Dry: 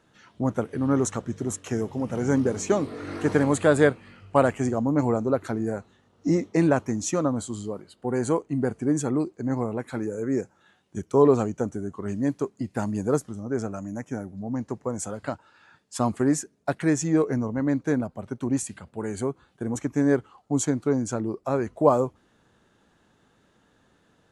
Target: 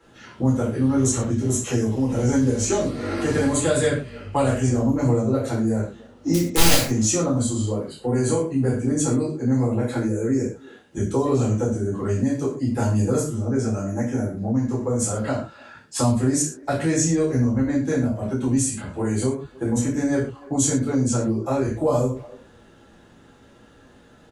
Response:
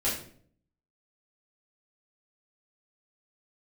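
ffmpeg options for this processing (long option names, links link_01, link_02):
-filter_complex "[0:a]asplit=3[link_01][link_02][link_03];[link_01]afade=type=out:start_time=6.33:duration=0.02[link_04];[link_02]aeval=exprs='(mod(5.01*val(0)+1,2)-1)/5.01':channel_layout=same,afade=type=in:start_time=6.33:duration=0.02,afade=type=out:start_time=6.77:duration=0.02[link_05];[link_03]afade=type=in:start_time=6.77:duration=0.02[link_06];[link_04][link_05][link_06]amix=inputs=3:normalize=0,asplit=2[link_07][link_08];[link_08]adelay=290,highpass=300,lowpass=3400,asoftclip=type=hard:threshold=-14dB,volume=-29dB[link_09];[link_07][link_09]amix=inputs=2:normalize=0[link_10];[1:a]atrim=start_sample=2205,atrim=end_sample=6615[link_11];[link_10][link_11]afir=irnorm=-1:irlink=0,acrossover=split=120|3000[link_12][link_13][link_14];[link_13]acompressor=threshold=-26dB:ratio=3[link_15];[link_12][link_15][link_14]amix=inputs=3:normalize=0,volume=2dB"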